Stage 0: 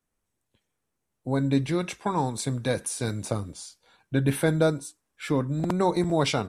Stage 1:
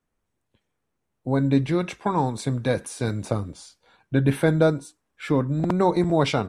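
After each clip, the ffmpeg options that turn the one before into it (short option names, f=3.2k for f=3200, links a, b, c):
-af "highshelf=f=4.7k:g=-11,volume=3.5dB"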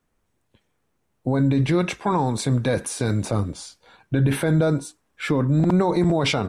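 -af "alimiter=limit=-18dB:level=0:latency=1:release=31,volume=6.5dB"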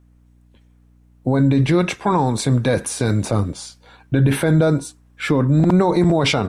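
-af "aeval=exprs='val(0)+0.00178*(sin(2*PI*60*n/s)+sin(2*PI*2*60*n/s)/2+sin(2*PI*3*60*n/s)/3+sin(2*PI*4*60*n/s)/4+sin(2*PI*5*60*n/s)/5)':c=same,volume=4dB"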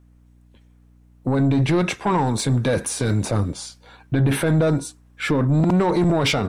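-af "asoftclip=type=tanh:threshold=-12.5dB"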